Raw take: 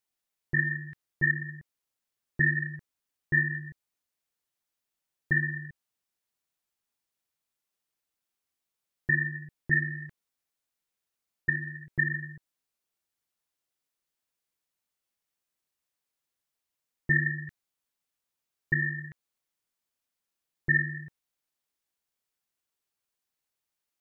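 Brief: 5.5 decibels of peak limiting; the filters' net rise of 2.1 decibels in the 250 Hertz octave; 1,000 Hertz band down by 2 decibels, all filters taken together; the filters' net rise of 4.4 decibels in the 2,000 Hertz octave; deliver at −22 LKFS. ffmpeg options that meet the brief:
ffmpeg -i in.wav -af "equalizer=frequency=250:width_type=o:gain=5,equalizer=frequency=1000:width_type=o:gain=-4.5,equalizer=frequency=2000:width_type=o:gain=6,volume=5dB,alimiter=limit=-9dB:level=0:latency=1" out.wav

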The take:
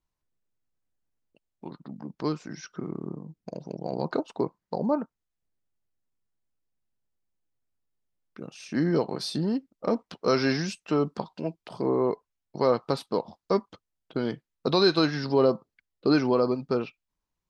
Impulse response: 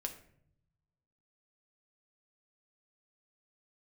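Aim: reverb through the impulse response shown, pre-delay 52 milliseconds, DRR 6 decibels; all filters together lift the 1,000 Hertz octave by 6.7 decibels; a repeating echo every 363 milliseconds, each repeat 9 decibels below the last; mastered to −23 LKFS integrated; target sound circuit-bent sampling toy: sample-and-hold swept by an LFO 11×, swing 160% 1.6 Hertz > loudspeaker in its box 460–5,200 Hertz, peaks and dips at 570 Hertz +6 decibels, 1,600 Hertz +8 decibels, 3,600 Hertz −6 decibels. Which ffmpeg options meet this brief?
-filter_complex "[0:a]equalizer=frequency=1000:width_type=o:gain=7,aecho=1:1:363|726|1089|1452:0.355|0.124|0.0435|0.0152,asplit=2[link_01][link_02];[1:a]atrim=start_sample=2205,adelay=52[link_03];[link_02][link_03]afir=irnorm=-1:irlink=0,volume=-5dB[link_04];[link_01][link_04]amix=inputs=2:normalize=0,acrusher=samples=11:mix=1:aa=0.000001:lfo=1:lforange=17.6:lforate=1.6,highpass=460,equalizer=frequency=570:width_type=q:width=4:gain=6,equalizer=frequency=1600:width_type=q:width=4:gain=8,equalizer=frequency=3600:width_type=q:width=4:gain=-6,lowpass=frequency=5200:width=0.5412,lowpass=frequency=5200:width=1.3066,volume=3dB"

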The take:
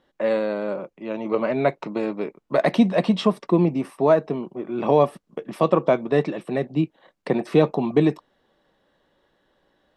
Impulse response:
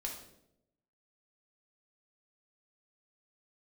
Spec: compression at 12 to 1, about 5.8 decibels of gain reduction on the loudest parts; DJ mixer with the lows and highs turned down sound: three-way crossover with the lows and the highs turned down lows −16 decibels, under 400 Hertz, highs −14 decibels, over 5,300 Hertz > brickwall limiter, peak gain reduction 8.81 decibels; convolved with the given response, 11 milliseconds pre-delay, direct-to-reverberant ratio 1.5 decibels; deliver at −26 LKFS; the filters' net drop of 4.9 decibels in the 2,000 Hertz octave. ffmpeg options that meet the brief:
-filter_complex "[0:a]equalizer=frequency=2000:width_type=o:gain=-6,acompressor=threshold=-17dB:ratio=12,asplit=2[link_01][link_02];[1:a]atrim=start_sample=2205,adelay=11[link_03];[link_02][link_03]afir=irnorm=-1:irlink=0,volume=-1.5dB[link_04];[link_01][link_04]amix=inputs=2:normalize=0,acrossover=split=400 5300:gain=0.158 1 0.2[link_05][link_06][link_07];[link_05][link_06][link_07]amix=inputs=3:normalize=0,volume=4dB,alimiter=limit=-15dB:level=0:latency=1"

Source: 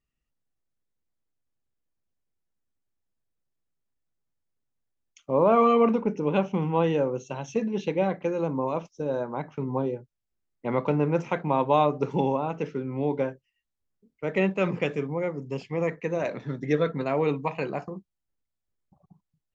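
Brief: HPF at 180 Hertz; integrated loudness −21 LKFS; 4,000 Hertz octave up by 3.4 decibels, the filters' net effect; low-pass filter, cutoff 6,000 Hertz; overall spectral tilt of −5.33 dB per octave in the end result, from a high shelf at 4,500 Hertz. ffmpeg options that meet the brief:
ffmpeg -i in.wav -af "highpass=180,lowpass=6000,equalizer=frequency=4000:width_type=o:gain=8.5,highshelf=frequency=4500:gain=-7.5,volume=6.5dB" out.wav

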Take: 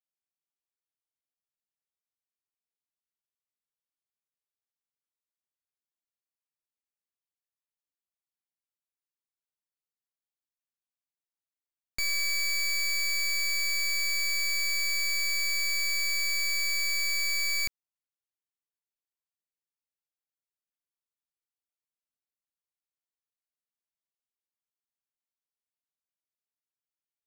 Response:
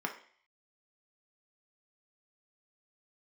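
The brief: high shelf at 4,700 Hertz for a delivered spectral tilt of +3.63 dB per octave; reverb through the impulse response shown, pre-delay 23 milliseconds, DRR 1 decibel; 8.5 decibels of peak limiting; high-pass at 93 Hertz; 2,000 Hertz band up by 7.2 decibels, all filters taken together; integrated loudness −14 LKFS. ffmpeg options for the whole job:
-filter_complex "[0:a]highpass=93,equalizer=frequency=2000:width_type=o:gain=7,highshelf=frequency=4700:gain=6.5,alimiter=level_in=0.5dB:limit=-24dB:level=0:latency=1,volume=-0.5dB,asplit=2[link_01][link_02];[1:a]atrim=start_sample=2205,adelay=23[link_03];[link_02][link_03]afir=irnorm=-1:irlink=0,volume=-5.5dB[link_04];[link_01][link_04]amix=inputs=2:normalize=0,volume=15dB"

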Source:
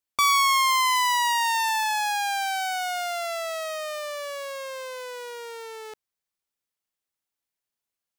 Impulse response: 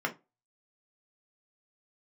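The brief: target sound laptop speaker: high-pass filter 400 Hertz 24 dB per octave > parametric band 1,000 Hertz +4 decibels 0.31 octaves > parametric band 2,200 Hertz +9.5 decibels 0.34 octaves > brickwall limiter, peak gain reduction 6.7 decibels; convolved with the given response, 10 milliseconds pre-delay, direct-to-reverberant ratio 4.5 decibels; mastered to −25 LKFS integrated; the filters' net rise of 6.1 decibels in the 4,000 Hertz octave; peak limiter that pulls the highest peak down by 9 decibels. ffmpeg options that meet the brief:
-filter_complex "[0:a]equalizer=frequency=4000:width_type=o:gain=7,alimiter=limit=-18.5dB:level=0:latency=1,asplit=2[link_01][link_02];[1:a]atrim=start_sample=2205,adelay=10[link_03];[link_02][link_03]afir=irnorm=-1:irlink=0,volume=-12dB[link_04];[link_01][link_04]amix=inputs=2:normalize=0,highpass=frequency=400:width=0.5412,highpass=frequency=400:width=1.3066,equalizer=frequency=1000:width_type=o:width=0.31:gain=4,equalizer=frequency=2200:width_type=o:width=0.34:gain=9.5,volume=0.5dB,alimiter=limit=-16dB:level=0:latency=1"

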